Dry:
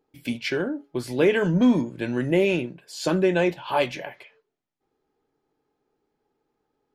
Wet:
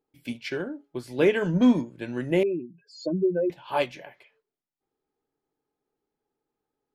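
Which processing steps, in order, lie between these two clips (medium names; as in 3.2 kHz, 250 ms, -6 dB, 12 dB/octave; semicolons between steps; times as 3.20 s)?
2.43–3.50 s: spectral contrast enhancement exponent 3.1; upward expansion 1.5:1, over -32 dBFS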